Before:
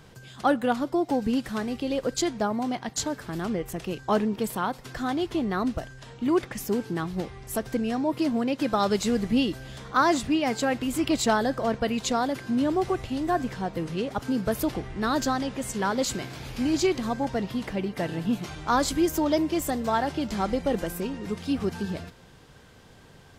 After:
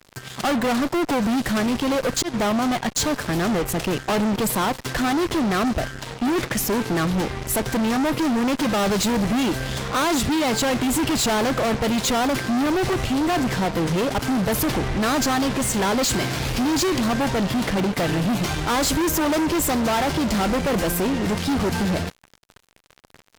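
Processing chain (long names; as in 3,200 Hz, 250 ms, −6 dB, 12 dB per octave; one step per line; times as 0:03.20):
0:01.89–0:02.34: volume swells 212 ms
fuzz pedal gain 37 dB, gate −45 dBFS
level −6 dB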